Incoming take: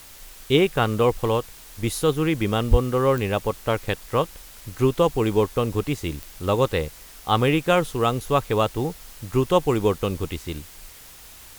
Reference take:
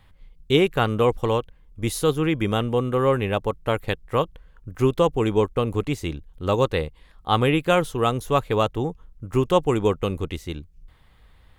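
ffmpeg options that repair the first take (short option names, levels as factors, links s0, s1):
-filter_complex "[0:a]adeclick=t=4,asplit=3[s0][s1][s2];[s0]afade=t=out:st=2.7:d=0.02[s3];[s1]highpass=f=140:w=0.5412,highpass=f=140:w=1.3066,afade=t=in:st=2.7:d=0.02,afade=t=out:st=2.82:d=0.02[s4];[s2]afade=t=in:st=2.82:d=0.02[s5];[s3][s4][s5]amix=inputs=3:normalize=0,afwtdn=0.0056"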